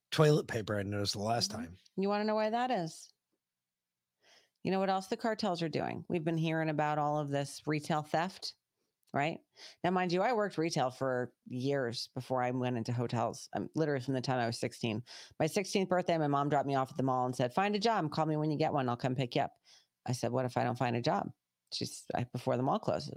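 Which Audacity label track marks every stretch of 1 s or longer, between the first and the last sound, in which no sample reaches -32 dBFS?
2.870000	4.650000	silence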